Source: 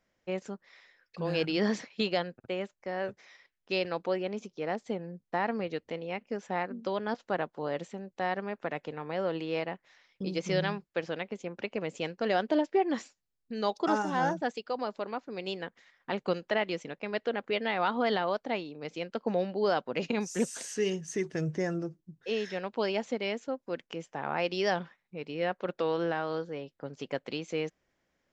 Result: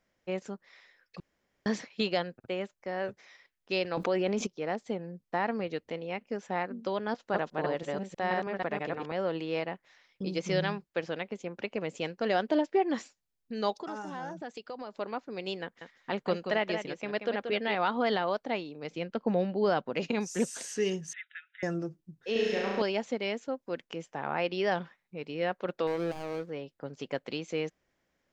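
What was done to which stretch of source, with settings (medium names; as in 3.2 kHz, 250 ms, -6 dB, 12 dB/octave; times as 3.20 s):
1.20–1.66 s: room tone
3.97–4.47 s: level flattener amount 70%
7.18–9.12 s: chunks repeated in reverse 161 ms, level -1 dB
13.75–14.96 s: compression 3:1, threshold -38 dBFS
15.63–17.75 s: delay 182 ms -7.5 dB
18.92–19.90 s: tone controls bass +6 dB, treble -6 dB
21.13–21.63 s: brick-wall FIR band-pass 1.3–3.9 kHz
22.32–22.82 s: flutter echo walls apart 6 m, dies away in 1.3 s
24.27–24.70 s: low-pass 5.2 kHz -> 3.1 kHz
25.87–26.50 s: median filter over 41 samples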